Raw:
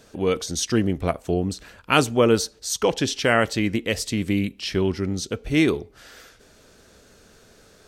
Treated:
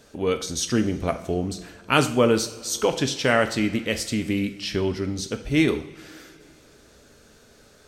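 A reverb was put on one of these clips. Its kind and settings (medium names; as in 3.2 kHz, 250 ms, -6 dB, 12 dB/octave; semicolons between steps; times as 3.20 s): two-slope reverb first 0.51 s, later 2.9 s, from -18 dB, DRR 7.5 dB; trim -1.5 dB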